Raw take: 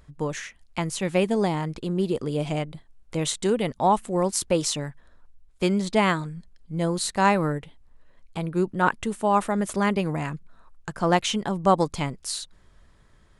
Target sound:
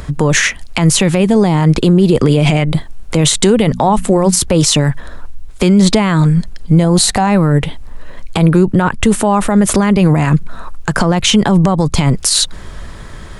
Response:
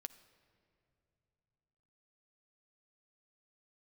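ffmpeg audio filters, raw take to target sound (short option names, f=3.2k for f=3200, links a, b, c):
-filter_complex "[0:a]asettb=1/sr,asplit=3[a][b][c];[a]atrim=end=3.634[d];[b]atrim=start=3.63:end=4.39,asetpts=PTS-STARTPTS,afade=t=in:d=0.004:c=qsin,afade=t=out:st=0.756:d=0.004:c=qsin,bandreject=f=60:t=h:w=6,bandreject=f=120:t=h:w=6,bandreject=f=180:t=h:w=6,bandreject=f=240:t=h:w=6[e];[c]atrim=start=4.386[f];[d][e]acrossfade=d=0.004:c1=hsin:c2=qsin[g];[g][f]acrossfade=d=0.004:c1=qsin:c2=hsin,asettb=1/sr,asplit=3[h][i][j];[h]atrim=end=6.844[k];[i]atrim=start=6.84:end=7.27,asetpts=PTS-STARTPTS,afade=t=in:d=0.004:c=qsin,afade=t=out:st=0.426:d=0.004:c=qsin,equalizer=f=760:t=o:w=0.21:g=11.5[l];[j]atrim=start=7.266[m];[k][l]acrossfade=d=0.004:c1=hsin:c2=qsin[n];[n][m]acrossfade=d=0.004:c1=qsin:c2=hsin,acrossover=split=150[o][p];[p]acompressor=threshold=-31dB:ratio=6[q];[o][q]amix=inputs=2:normalize=0,asettb=1/sr,asplit=3[r][s][t];[r]atrim=end=2.164[u];[s]atrim=start=2.16:end=2.71,asetpts=PTS-STARTPTS,afade=t=in:d=0.004:c=qsin,afade=t=out:st=0.546:d=0.004:c=qsin,equalizer=f=2.2k:t=o:w=0.86:g=6.5[v];[t]atrim=start=2.706[w];[u][v]acrossfade=d=0.004:c1=hsin:c2=qsin[x];[x][w]acrossfade=d=0.004:c1=qsin:c2=hsin,alimiter=level_in=28dB:limit=-1dB:release=50:level=0:latency=1,volume=-1dB"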